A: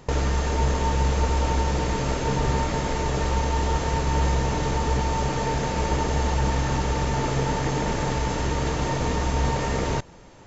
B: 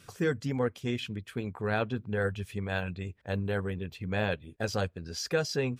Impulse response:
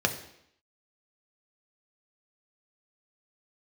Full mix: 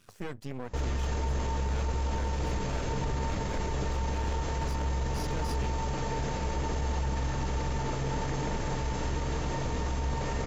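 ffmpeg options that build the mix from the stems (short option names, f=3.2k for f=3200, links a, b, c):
-filter_complex "[0:a]lowshelf=f=62:g=8,adelay=650,volume=-7dB[a];[1:a]alimiter=limit=-22.5dB:level=0:latency=1,aeval=exprs='max(val(0),0)':c=same,volume=-3dB[b];[a][b]amix=inputs=2:normalize=0,alimiter=limit=-23dB:level=0:latency=1:release=19"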